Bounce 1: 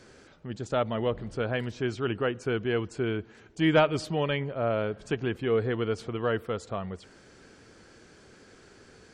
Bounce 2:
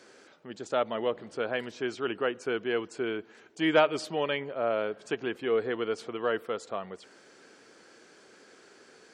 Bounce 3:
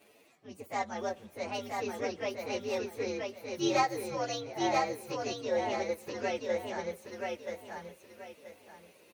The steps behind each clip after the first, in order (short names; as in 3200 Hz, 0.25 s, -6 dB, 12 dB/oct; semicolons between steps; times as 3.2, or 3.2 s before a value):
HPF 310 Hz 12 dB/oct
inharmonic rescaling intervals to 126%; feedback echo 0.979 s, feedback 28%, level -3 dB; gain -2.5 dB